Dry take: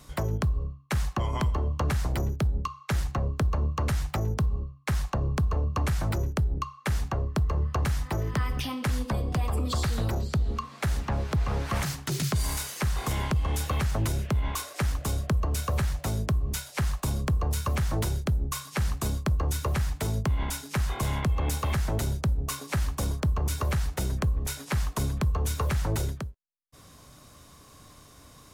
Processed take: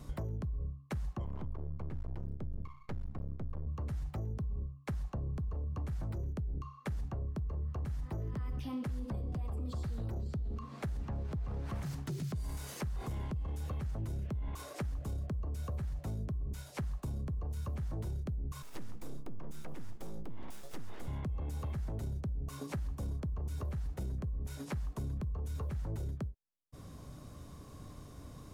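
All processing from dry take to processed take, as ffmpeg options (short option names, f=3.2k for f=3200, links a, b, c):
-filter_complex "[0:a]asettb=1/sr,asplit=3[a][b][c];[a]atrim=end=1.244[d];[b]atrim=start=1.24:end=3.67,asetpts=PTS-STARTPTS,afade=t=in:d=0.004:c=qsin,afade=t=out:st=2.426:d=0.004:c=qsin,lowpass=f=1.5k:p=1,aeval=exprs='max(val(0),0)':c=same[e];[c]atrim=start=3.666[f];[d][e]acrossfade=d=0.004:c1=hsin:c2=qsin[g];[g][f]acrossfade=d=0.004:c1=qsin:c2=hsin,asettb=1/sr,asplit=3[h][i][j];[h]atrim=end=18.624[k];[i]atrim=start=18.62:end=21.08,asetpts=PTS-STARTPTS,afade=t=in:d=0.004:c=qsin,afade=t=out:st=2.456:d=0.004:c=qsin,aeval=exprs='abs(val(0))':c=same,equalizer=f=99:w=0.79:g=-10.5,bandreject=f=4.2k:w=20[l];[j]atrim=start=21.076[m];[k][l]acrossfade=d=0.004:c1=hsin:c2=qsin[n];[n][m]acrossfade=d=0.004:c1=qsin:c2=hsin,alimiter=level_in=3dB:limit=-24dB:level=0:latency=1:release=24,volume=-3dB,tiltshelf=f=740:g=7,acompressor=threshold=-35dB:ratio=4,volume=-1.5dB"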